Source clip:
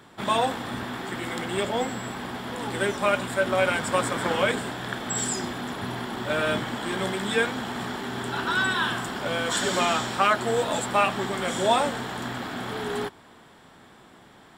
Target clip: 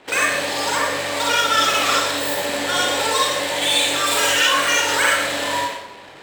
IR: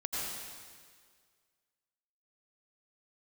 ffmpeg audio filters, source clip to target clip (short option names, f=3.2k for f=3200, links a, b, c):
-filter_complex "[1:a]atrim=start_sample=2205[a];[0:a][a]afir=irnorm=-1:irlink=0,asplit=2[b][c];[c]acompressor=threshold=-29dB:ratio=6,volume=0.5dB[d];[b][d]amix=inputs=2:normalize=0,equalizer=f=3.2k:w=1.5:g=2,adynamicsmooth=sensitivity=6.5:basefreq=850,asetrate=103194,aresample=44100"